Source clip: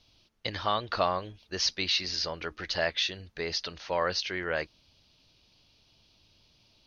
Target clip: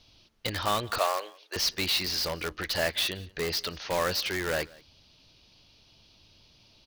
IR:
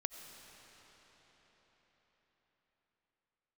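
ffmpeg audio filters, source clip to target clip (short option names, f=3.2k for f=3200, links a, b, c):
-filter_complex "[0:a]asplit=2[a][b];[b]aeval=exprs='(mod(25.1*val(0)+1,2)-1)/25.1':c=same,volume=-3dB[c];[a][c]amix=inputs=2:normalize=0,asettb=1/sr,asplit=3[d][e][f];[d]atrim=end=0.984[g];[e]atrim=start=0.98:end=1.56,asetpts=PTS-STARTPTS,afade=t=in:d=0.004:c=qsin,afade=t=out:st=0.576:d=0.004:c=qsin,highpass=f=450:w=0.5412,highpass=f=450:w=1.3066[h];[f]atrim=start=1.556[i];[g][h]acrossfade=d=0.004:c1=hsin:c2=qsin[j];[j][i]acrossfade=d=0.004:c1=qsin:c2=hsin,aecho=1:1:178:0.0631"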